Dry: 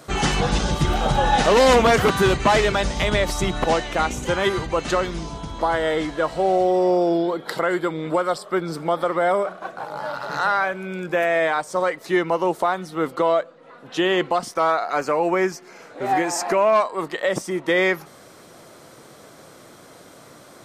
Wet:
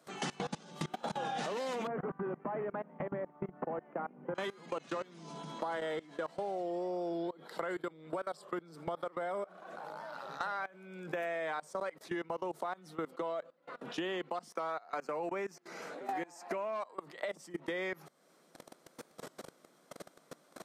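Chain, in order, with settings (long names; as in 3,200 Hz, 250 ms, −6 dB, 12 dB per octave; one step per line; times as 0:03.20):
Chebyshev high-pass filter 150 Hz, order 6
output level in coarse steps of 23 dB
0:01.87–0:04.35: Gaussian smoothing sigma 5.9 samples
downward compressor 3 to 1, threshold −43 dBFS, peak gain reduction 17 dB
wow of a warped record 33 1/3 rpm, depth 100 cents
level +2.5 dB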